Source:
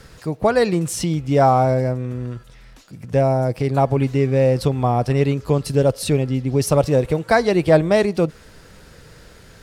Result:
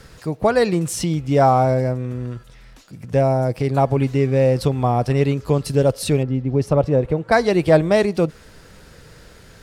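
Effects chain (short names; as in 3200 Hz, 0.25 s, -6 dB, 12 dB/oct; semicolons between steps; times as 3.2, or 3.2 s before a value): 6.23–7.32 LPF 1200 Hz 6 dB/oct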